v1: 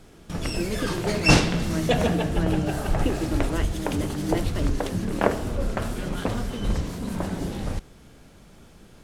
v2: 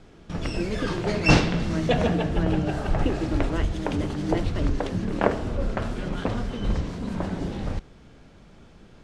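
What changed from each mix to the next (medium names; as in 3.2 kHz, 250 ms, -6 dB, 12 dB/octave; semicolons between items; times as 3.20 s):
master: add distance through air 95 m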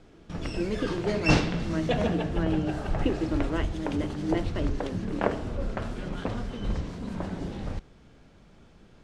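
background -4.5 dB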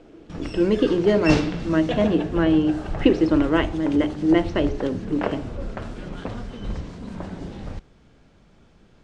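speech +11.0 dB; master: add low-pass 10 kHz 24 dB/octave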